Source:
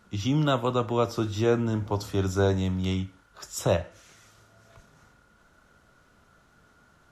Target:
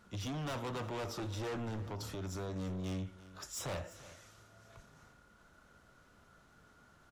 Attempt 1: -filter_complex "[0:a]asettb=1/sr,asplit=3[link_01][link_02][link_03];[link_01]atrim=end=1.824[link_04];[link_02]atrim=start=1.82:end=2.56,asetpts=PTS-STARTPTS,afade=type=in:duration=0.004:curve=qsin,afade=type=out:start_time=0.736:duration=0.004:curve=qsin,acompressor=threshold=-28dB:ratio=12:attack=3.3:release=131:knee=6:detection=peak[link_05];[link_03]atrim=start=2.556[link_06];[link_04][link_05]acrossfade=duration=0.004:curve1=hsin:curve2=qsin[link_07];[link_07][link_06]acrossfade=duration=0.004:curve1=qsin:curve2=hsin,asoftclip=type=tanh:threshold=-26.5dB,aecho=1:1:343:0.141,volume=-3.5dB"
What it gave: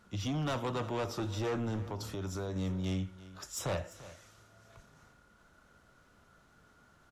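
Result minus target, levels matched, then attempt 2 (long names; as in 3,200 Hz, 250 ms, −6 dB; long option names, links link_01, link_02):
soft clipping: distortion −4 dB
-filter_complex "[0:a]asettb=1/sr,asplit=3[link_01][link_02][link_03];[link_01]atrim=end=1.824[link_04];[link_02]atrim=start=1.82:end=2.56,asetpts=PTS-STARTPTS,afade=type=in:duration=0.004:curve=qsin,afade=type=out:start_time=0.736:duration=0.004:curve=qsin,acompressor=threshold=-28dB:ratio=12:attack=3.3:release=131:knee=6:detection=peak[link_05];[link_03]atrim=start=2.556[link_06];[link_04][link_05]acrossfade=duration=0.004:curve1=hsin:curve2=qsin[link_07];[link_07][link_06]acrossfade=duration=0.004:curve1=qsin:curve2=hsin,asoftclip=type=tanh:threshold=-33.5dB,aecho=1:1:343:0.141,volume=-3.5dB"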